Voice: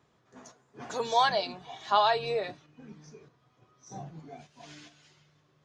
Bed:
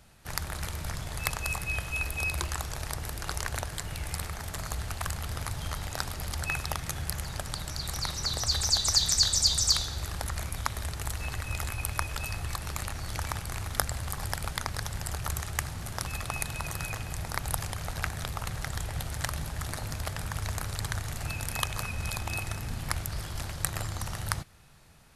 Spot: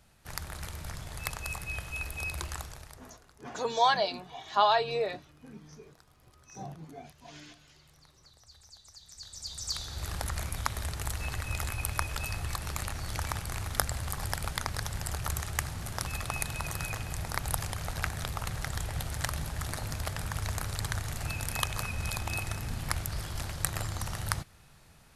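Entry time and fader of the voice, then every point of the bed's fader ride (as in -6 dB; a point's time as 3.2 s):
2.65 s, 0.0 dB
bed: 2.59 s -5 dB
3.36 s -28.5 dB
9.01 s -28.5 dB
10.09 s -0.5 dB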